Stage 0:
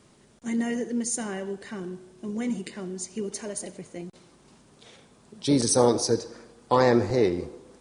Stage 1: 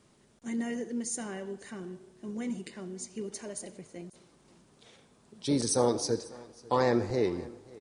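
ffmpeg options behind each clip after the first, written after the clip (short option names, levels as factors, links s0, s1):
-af "aecho=1:1:545:0.0794,volume=0.501"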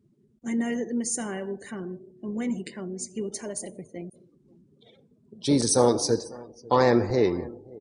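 -af "afftdn=nr=28:nf=-54,volume=2"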